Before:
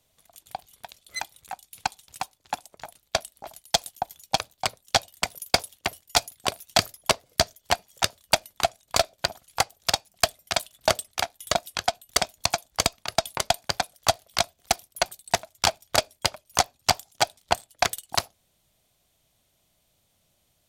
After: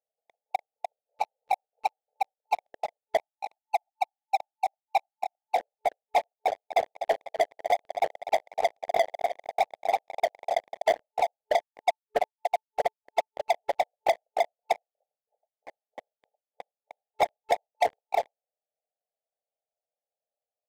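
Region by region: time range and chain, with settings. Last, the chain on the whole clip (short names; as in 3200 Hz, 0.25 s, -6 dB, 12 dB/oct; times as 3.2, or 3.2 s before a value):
1.2–2.22 tilt -1.5 dB/oct + three-band squash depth 100%
3.17–5.56 block floating point 5-bit + steep high-pass 760 Hz 48 dB/oct
6.27–10.96 comb 2.8 ms, depth 76% + AM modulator 100 Hz, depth 70% + feedback echo 0.247 s, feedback 49%, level -17 dB
11.61–13.46 companded quantiser 6-bit + comb 6.9 ms, depth 34% + upward expander 2.5:1, over -39 dBFS
14.98–17.09 spectral limiter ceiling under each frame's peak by 12 dB + bell 100 Hz +11.5 dB 2.2 oct + auto swell 0.54 s
whole clip: FFT band-pass 420–880 Hz; sample leveller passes 5; gain -7 dB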